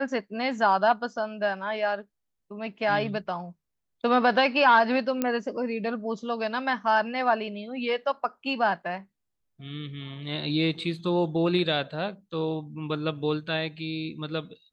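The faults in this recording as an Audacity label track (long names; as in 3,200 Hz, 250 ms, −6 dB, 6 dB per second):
5.220000	5.220000	click −12 dBFS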